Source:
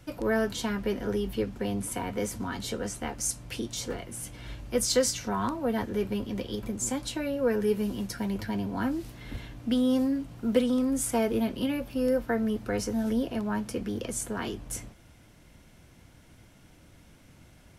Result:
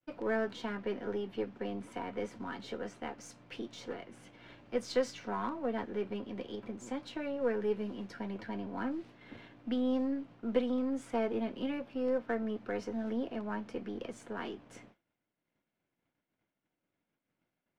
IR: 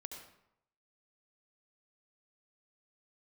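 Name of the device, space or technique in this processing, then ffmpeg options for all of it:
crystal radio: -af "agate=range=-33dB:threshold=-41dB:ratio=3:detection=peak,highpass=220,lowpass=2.9k,aeval=exprs='if(lt(val(0),0),0.708*val(0),val(0))':c=same,volume=-4dB"

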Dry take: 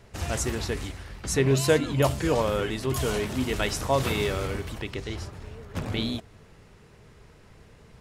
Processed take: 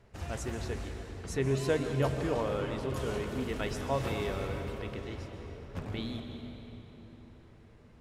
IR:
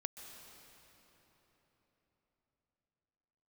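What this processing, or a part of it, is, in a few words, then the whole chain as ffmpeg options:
swimming-pool hall: -filter_complex "[1:a]atrim=start_sample=2205[a];[0:a][a]afir=irnorm=-1:irlink=0,highshelf=f=3.4k:g=-8,asettb=1/sr,asplit=3[b][c][d];[b]atrim=end=1.574[e];[c]atrim=start=1.57:end=3.29,asetpts=PTS-STARTPTS,afade=t=in:d=0.004:c=qsin,afade=t=out:st=1.716:d=0.004:c=qsin,lowpass=12k[f];[d]atrim=start=3.286[g];[e][f]acrossfade=d=0.004:c1=hsin:c2=qsin[h];[h][g]acrossfade=d=0.004:c1=qsin:c2=hsin,volume=-4.5dB"

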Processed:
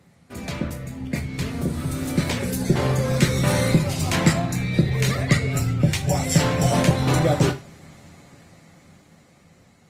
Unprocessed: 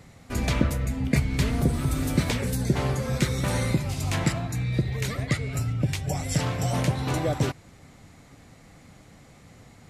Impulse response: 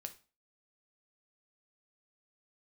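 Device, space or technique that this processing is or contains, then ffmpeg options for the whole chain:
far-field microphone of a smart speaker: -filter_complex "[1:a]atrim=start_sample=2205[a];[0:a][a]afir=irnorm=-1:irlink=0,highpass=f=80:w=0.5412,highpass=f=80:w=1.3066,dynaudnorm=f=530:g=9:m=13dB" -ar 48000 -c:a libopus -b:a 24k

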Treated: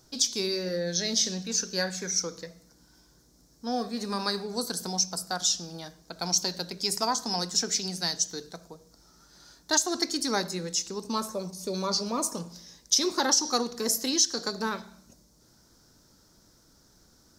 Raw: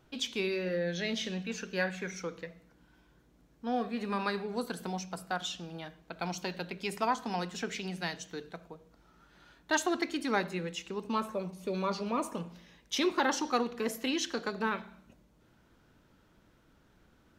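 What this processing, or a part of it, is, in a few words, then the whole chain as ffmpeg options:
over-bright horn tweeter: -af "highshelf=f=3.8k:t=q:w=3:g=11.5,alimiter=limit=-13dB:level=0:latency=1:release=187,volume=2dB"

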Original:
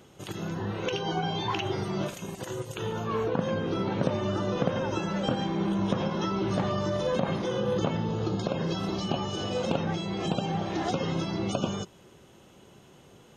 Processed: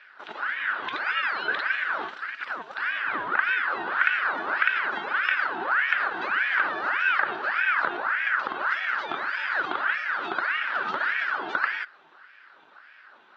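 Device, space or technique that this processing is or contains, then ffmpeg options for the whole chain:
voice changer toy: -af "aeval=exprs='val(0)*sin(2*PI*1300*n/s+1300*0.6/1.7*sin(2*PI*1.7*n/s))':c=same,highpass=470,equalizer=f=480:t=q:w=4:g=-7,equalizer=f=710:t=q:w=4:g=-6,equalizer=f=1k:t=q:w=4:g=-4,equalizer=f=1.5k:t=q:w=4:g=8,equalizer=f=2.2k:t=q:w=4:g=-5,lowpass=f=3.5k:w=0.5412,lowpass=f=3.5k:w=1.3066,volume=5dB"

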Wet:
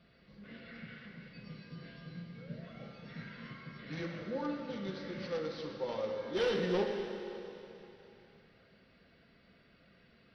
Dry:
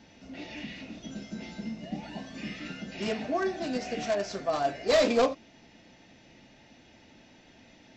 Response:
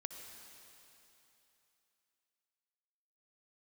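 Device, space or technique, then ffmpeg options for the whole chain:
slowed and reverbed: -filter_complex "[0:a]asetrate=33957,aresample=44100[a];[1:a]atrim=start_sample=2205[b];[a][b]afir=irnorm=-1:irlink=0,volume=-5.5dB"

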